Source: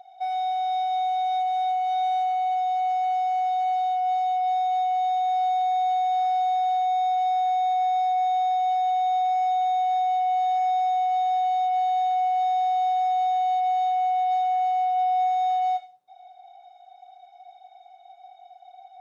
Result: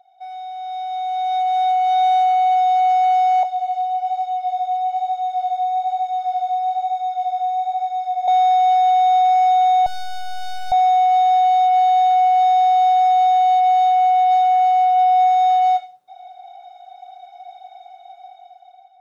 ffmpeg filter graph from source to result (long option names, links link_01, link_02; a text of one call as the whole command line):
ffmpeg -i in.wav -filter_complex "[0:a]asettb=1/sr,asplit=3[link_01][link_02][link_03];[link_01]atrim=end=3.434[link_04];[link_02]atrim=start=3.43:end=8.28,asetpts=PTS-STARTPTS,afade=type=in:duration=0.004:curve=qsin,afade=type=out:start_time=4.846:duration=0.004:curve=qsin,acrossover=split=1100|2500[link_05][link_06][link_07];[link_05]acompressor=threshold=-27dB:ratio=4[link_08];[link_06]acompressor=threshold=-60dB:ratio=4[link_09];[link_07]acompressor=threshold=-57dB:ratio=4[link_10];[link_08][link_09][link_10]amix=inputs=3:normalize=0,flanger=delay=16.5:depth=5.5:speed=1.1[link_11];[link_03]atrim=start=8.276[link_12];[link_04][link_11]acrossfade=duration=0.004:curve1=hsin:curve2=qsin[link_13];[link_13][link_12]acrossfade=duration=0.004:curve1=qsin:curve2=hsin,asettb=1/sr,asplit=3[link_14][link_15][link_16];[link_14]atrim=end=9.864[link_17];[link_15]atrim=start=9.86:end=10.72,asetpts=PTS-STARTPTS,afade=type=in:duration=0.004:curve=qsin,afade=type=out:start_time=0.856:duration=0.004:curve=qsin,aeval=exprs='clip(val(0),-1,0.0188)':channel_layout=same,asuperstop=centerf=1100:order=4:qfactor=0.58[link_18];[link_16]atrim=start=10.716[link_19];[link_17][link_18]acrossfade=duration=0.004:curve1=hsin:curve2=qsin[link_20];[link_20][link_19]acrossfade=duration=0.004:curve1=qsin:curve2=hsin,equalizer=frequency=1400:width=6.5:gain=3.5,bandreject=frequency=950:width=17,dynaudnorm=framelen=520:gausssize=5:maxgain=15.5dB,volume=-6dB" out.wav